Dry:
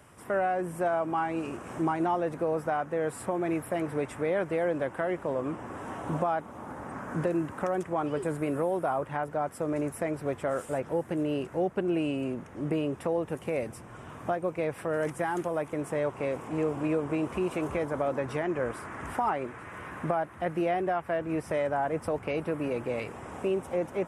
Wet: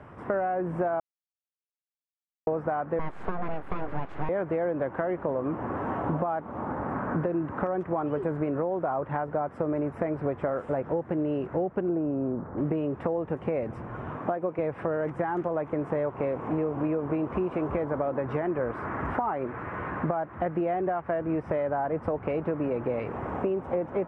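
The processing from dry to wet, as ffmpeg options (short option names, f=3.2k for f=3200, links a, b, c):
-filter_complex "[0:a]asettb=1/sr,asplit=3[a][b][c];[a]atrim=end=2.994[d];[b]atrim=start=2.99:end=4.29,asetpts=PTS-STARTPTS,afade=t=in:d=0.004:c=qsin,afade=t=out:st=1.296:d=0.004:c=qsin,aeval=exprs='abs(val(0))':c=same[e];[c]atrim=start=4.286[f];[d][e]acrossfade=d=0.004:c1=hsin:c2=qsin[g];[g][f]acrossfade=d=0.004:c1=qsin:c2=hsin,asettb=1/sr,asplit=3[h][i][j];[h]atrim=end=11.894[k];[i]atrim=start=11.89:end=12.58,asetpts=PTS-STARTPTS,afade=t=in:d=0.004:c=qsin,afade=t=out:st=0.686:d=0.004:c=qsin,lowpass=f=1.5k:w=0.5412,lowpass=f=1.5k:w=1.3066[l];[j]atrim=start=12.576[m];[k][l]acrossfade=d=0.004:c1=hsin:c2=qsin[n];[n][m]acrossfade=d=0.004:c1=qsin:c2=hsin,asettb=1/sr,asplit=3[o][p][q];[o]atrim=end=14.164[r];[p]atrim=start=14.16:end=14.59,asetpts=PTS-STARTPTS,afade=t=in:d=0.004:c=qsin,afade=t=out:st=0.426:d=0.004:c=qsin,highpass=170[s];[q]atrim=start=14.586[t];[r][s]acrossfade=d=0.004:c1=hsin:c2=qsin[u];[u][t]acrossfade=d=0.004:c1=qsin:c2=hsin,asplit=3[v][w][x];[v]atrim=end=1,asetpts=PTS-STARTPTS,afade=t=out:st=0.996:d=0.004:c=hsin[y];[w]atrim=start=1:end=2.47,asetpts=PTS-STARTPTS,volume=0[z];[x]atrim=start=2.47,asetpts=PTS-STARTPTS,afade=t=in:d=0.004:c=hsin[aa];[y][z][aa]concat=n=3:v=0:a=1,acompressor=threshold=-34dB:ratio=6,lowpass=1.5k,volume=9dB"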